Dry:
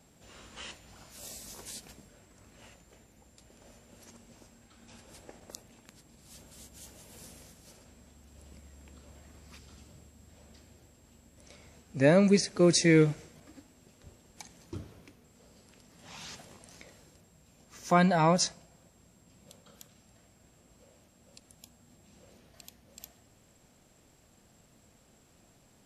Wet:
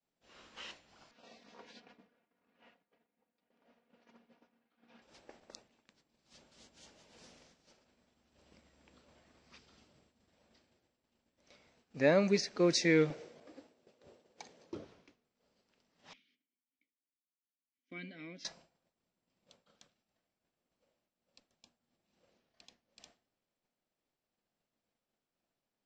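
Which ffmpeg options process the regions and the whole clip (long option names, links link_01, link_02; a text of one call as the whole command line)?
ffmpeg -i in.wav -filter_complex "[0:a]asettb=1/sr,asplit=3[link_01][link_02][link_03];[link_01]atrim=end=1.114[link_04];[link_02]atrim=start=1.11:end=5.02,asetpts=PTS-STARTPTS,afade=type=in:duration=0.004:curve=qsin,afade=type=out:start_time=3.906:duration=0.004:curve=qsin,highpass=130,lowpass=2700,aecho=1:1:4.2:0.55,atrim=end_sample=172431[link_05];[link_03]atrim=start=5.016[link_06];[link_04][link_05]acrossfade=duration=0.004:curve1=hsin:curve2=qsin[link_07];[link_07][link_06]acrossfade=duration=0.004:curve1=qsin:curve2=hsin,asettb=1/sr,asplit=3[link_08][link_09][link_10];[link_08]atrim=end=13.104[link_11];[link_09]atrim=start=13.1:end=14.85,asetpts=PTS-STARTPTS,afade=type=in:duration=0.004:curve=qsin,afade=type=out:start_time=1.746:duration=0.004:curve=qsin,highpass=72,equalizer=frequency=490:width=1.3:gain=10.5[link_12];[link_10]atrim=start=14.846[link_13];[link_11][link_12]acrossfade=duration=0.004:curve1=hsin:curve2=qsin[link_14];[link_14][link_13]acrossfade=duration=0.004:curve1=qsin:curve2=hsin,asettb=1/sr,asplit=3[link_15][link_16][link_17];[link_15]atrim=end=16.134[link_18];[link_16]atrim=start=16.13:end=18.45,asetpts=PTS-STARTPTS,afade=type=in:duration=0.004:curve=qsin,afade=type=out:start_time=2.316:duration=0.004:curve=qsin,asplit=3[link_19][link_20][link_21];[link_19]bandpass=frequency=270:width_type=q:width=8,volume=0dB[link_22];[link_20]bandpass=frequency=2290:width_type=q:width=8,volume=-6dB[link_23];[link_21]bandpass=frequency=3010:width_type=q:width=8,volume=-9dB[link_24];[link_22][link_23][link_24]amix=inputs=3:normalize=0,bandreject=frequency=132.5:width_type=h:width=4,bandreject=frequency=265:width_type=h:width=4,bandreject=frequency=397.5:width_type=h:width=4,bandreject=frequency=530:width_type=h:width=4,bandreject=frequency=662.5:width_type=h:width=4,bandreject=frequency=795:width_type=h:width=4,bandreject=frequency=927.5:width_type=h:width=4[link_25];[link_17]atrim=start=18.446[link_26];[link_18][link_25]acrossfade=duration=0.004:curve1=hsin:curve2=qsin[link_27];[link_27][link_26]acrossfade=duration=0.004:curve1=qsin:curve2=hsin,agate=range=-33dB:threshold=-49dB:ratio=3:detection=peak,lowpass=frequency=5700:width=0.5412,lowpass=frequency=5700:width=1.3066,equalizer=frequency=72:width_type=o:width=2.4:gain=-14.5,volume=-3dB" out.wav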